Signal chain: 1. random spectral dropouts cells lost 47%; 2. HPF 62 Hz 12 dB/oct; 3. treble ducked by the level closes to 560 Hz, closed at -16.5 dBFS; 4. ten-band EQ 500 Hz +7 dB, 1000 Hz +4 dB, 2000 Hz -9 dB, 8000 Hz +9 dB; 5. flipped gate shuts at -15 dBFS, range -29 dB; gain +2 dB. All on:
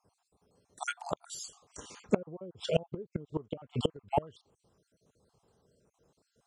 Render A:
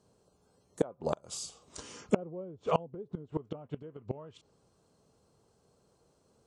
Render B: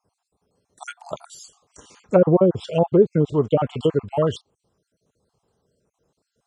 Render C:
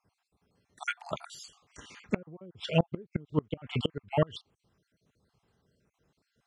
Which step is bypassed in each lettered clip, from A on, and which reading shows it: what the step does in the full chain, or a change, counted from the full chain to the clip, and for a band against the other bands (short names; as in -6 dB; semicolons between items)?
1, 2 kHz band -6.0 dB; 5, momentary loudness spread change +6 LU; 4, momentary loudness spread change +6 LU